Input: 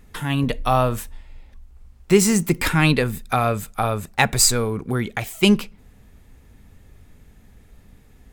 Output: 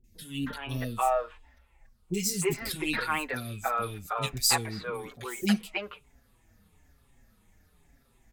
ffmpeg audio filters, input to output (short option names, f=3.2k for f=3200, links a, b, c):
-filter_complex "[0:a]afftfilt=real='re*pow(10,8/40*sin(2*PI*(0.7*log(max(b,1)*sr/1024/100)/log(2)-(-2.8)*(pts-256)/sr)))':imag='im*pow(10,8/40*sin(2*PI*(0.7*log(max(b,1)*sr/1024/100)/log(2)-(-2.8)*(pts-256)/sr)))':win_size=1024:overlap=0.75,lowshelf=f=310:g=-8,acrossover=split=400|2800[a][b][c];[c]adelay=40[d];[b]adelay=320[e];[a][e][d]amix=inputs=3:normalize=0,asplit=2[f][g];[g]adelay=5.6,afreqshift=-1.1[h];[f][h]amix=inputs=2:normalize=1,volume=-4.5dB"